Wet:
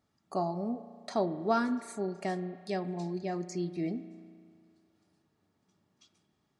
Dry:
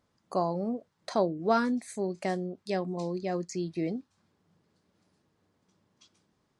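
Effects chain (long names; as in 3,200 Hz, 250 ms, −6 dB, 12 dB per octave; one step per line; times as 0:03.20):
notch comb filter 510 Hz
spring reverb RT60 2.1 s, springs 34 ms, chirp 45 ms, DRR 12.5 dB
level −2 dB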